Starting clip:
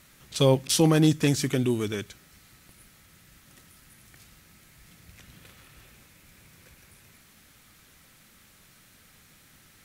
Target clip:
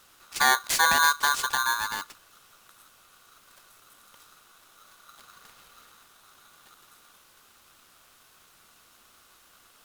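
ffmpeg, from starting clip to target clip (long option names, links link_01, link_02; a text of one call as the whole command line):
ffmpeg -i in.wav -af "aeval=exprs='val(0)*sgn(sin(2*PI*1300*n/s))':channel_layout=same,volume=-1.5dB" out.wav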